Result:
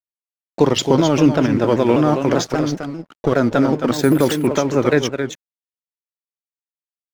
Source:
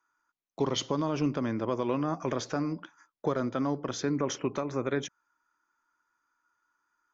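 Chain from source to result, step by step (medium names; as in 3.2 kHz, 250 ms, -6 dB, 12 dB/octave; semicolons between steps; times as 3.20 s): band-stop 1.1 kHz, Q 6.3; in parallel at +2 dB: volume shaper 82 bpm, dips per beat 1, -16 dB, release 190 ms; 2.47–3.32 s: on the sum: valve stage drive 14 dB, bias 0.7; crossover distortion -45 dBFS; on a send: delay 270 ms -7.5 dB; 3.93–4.47 s: on the sum: careless resampling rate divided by 4×, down filtered, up hold; vibrato with a chosen wave saw down 5.1 Hz, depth 160 cents; trim +8 dB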